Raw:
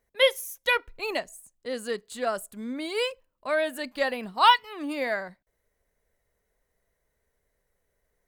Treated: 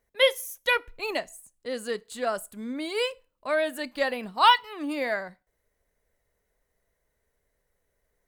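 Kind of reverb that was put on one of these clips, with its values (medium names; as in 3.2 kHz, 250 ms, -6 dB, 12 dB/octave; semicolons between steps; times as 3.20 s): FDN reverb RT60 0.33 s, low-frequency decay 0.75×, high-frequency decay 0.95×, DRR 18.5 dB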